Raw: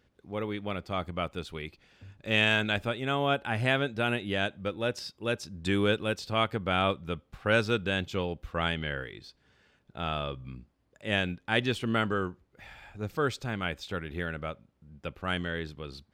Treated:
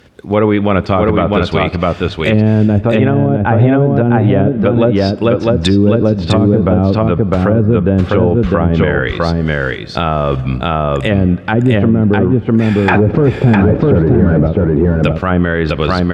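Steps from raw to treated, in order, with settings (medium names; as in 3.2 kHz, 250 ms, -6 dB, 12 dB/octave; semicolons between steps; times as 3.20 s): 12.88–14.47 s: overdrive pedal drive 34 dB, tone 4 kHz, clips at -16 dBFS; low-pass that closes with the level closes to 320 Hz, closed at -24 dBFS; in parallel at -0.5 dB: level held to a coarse grid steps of 22 dB; on the sum: high-pass 55 Hz 12 dB/octave; delay 654 ms -3 dB; on a send at -21 dB: reverberation RT60 2.8 s, pre-delay 9 ms; on the sum: loudness maximiser +23 dB; trim -1 dB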